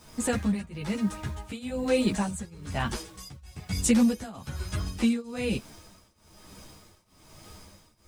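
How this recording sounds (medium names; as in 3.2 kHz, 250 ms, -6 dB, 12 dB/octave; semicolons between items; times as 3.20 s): a quantiser's noise floor 10-bit, dither none; tremolo triangle 1.1 Hz, depth 95%; a shimmering, thickened sound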